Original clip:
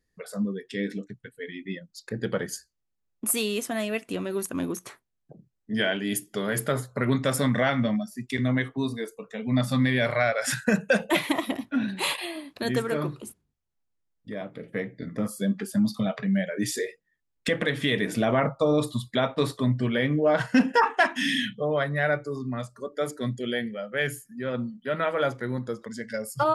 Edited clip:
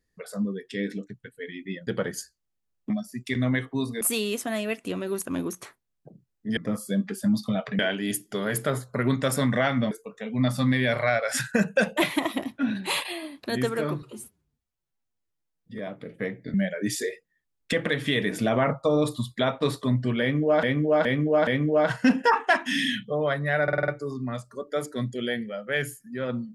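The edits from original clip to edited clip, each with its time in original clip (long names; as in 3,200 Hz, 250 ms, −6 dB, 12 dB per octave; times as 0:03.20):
0:01.87–0:02.22: remove
0:07.93–0:09.04: move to 0:03.25
0:13.15–0:14.33: time-stretch 1.5×
0:15.08–0:16.30: move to 0:05.81
0:19.97–0:20.39: repeat, 4 plays
0:22.13: stutter 0.05 s, 6 plays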